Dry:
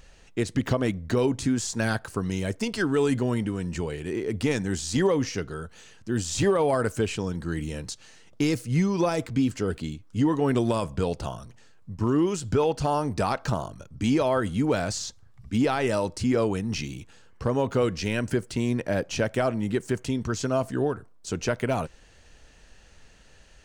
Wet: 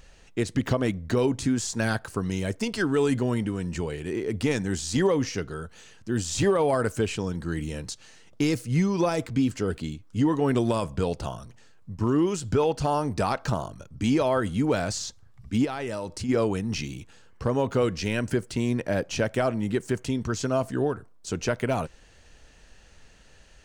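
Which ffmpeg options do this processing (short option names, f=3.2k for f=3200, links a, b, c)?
-filter_complex "[0:a]asplit=3[a][b][c];[a]afade=t=out:st=15.64:d=0.02[d];[b]acompressor=threshold=-31dB:ratio=2.5:attack=3.2:release=140:knee=1:detection=peak,afade=t=in:st=15.64:d=0.02,afade=t=out:st=16.28:d=0.02[e];[c]afade=t=in:st=16.28:d=0.02[f];[d][e][f]amix=inputs=3:normalize=0"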